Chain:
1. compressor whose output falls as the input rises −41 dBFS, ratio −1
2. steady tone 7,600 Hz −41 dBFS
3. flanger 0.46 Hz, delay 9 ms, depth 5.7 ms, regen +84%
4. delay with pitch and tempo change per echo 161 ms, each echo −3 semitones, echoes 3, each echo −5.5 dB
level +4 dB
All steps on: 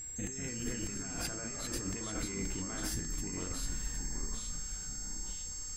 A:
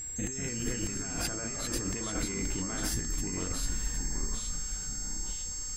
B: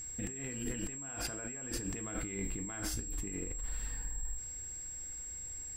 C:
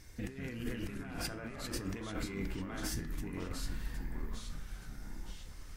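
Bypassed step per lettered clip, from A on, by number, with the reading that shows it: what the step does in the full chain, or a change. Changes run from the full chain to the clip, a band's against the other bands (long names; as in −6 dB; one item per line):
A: 3, change in integrated loudness +4.5 LU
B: 4, 4 kHz band −4.0 dB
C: 2, 8 kHz band −13.5 dB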